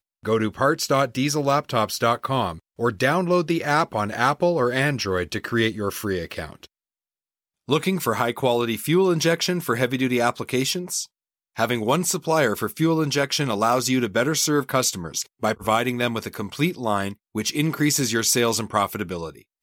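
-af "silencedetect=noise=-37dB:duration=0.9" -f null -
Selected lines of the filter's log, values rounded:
silence_start: 6.65
silence_end: 7.68 | silence_duration: 1.03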